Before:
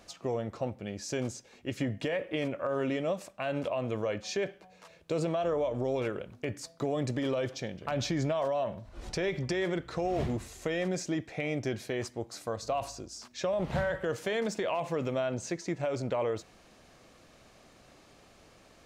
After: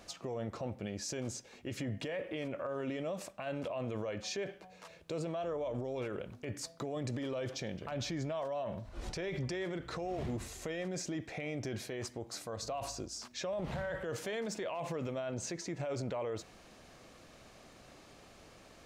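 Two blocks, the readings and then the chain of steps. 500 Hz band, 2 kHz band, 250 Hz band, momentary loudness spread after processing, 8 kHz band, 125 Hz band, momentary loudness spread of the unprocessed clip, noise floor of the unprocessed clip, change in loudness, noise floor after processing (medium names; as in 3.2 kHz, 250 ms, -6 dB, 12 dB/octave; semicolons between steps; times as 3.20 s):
-7.0 dB, -6.5 dB, -6.0 dB, 19 LU, -0.5 dB, -5.0 dB, 8 LU, -59 dBFS, -6.0 dB, -58 dBFS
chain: peak limiter -31.5 dBFS, peak gain reduction 11 dB; trim +1 dB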